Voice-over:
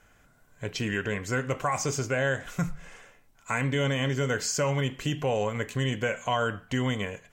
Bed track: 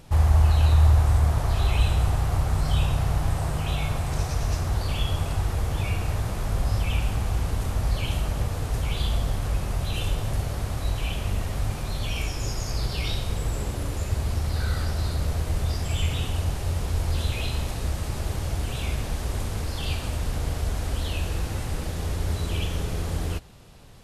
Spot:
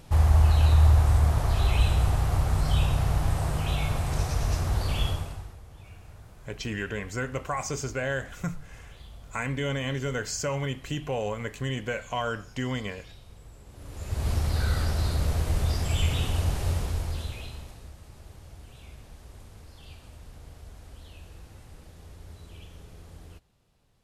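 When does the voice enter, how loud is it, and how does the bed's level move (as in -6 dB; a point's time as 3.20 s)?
5.85 s, -3.0 dB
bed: 5.07 s -1 dB
5.60 s -21.5 dB
13.64 s -21.5 dB
14.28 s 0 dB
16.71 s 0 dB
17.95 s -19 dB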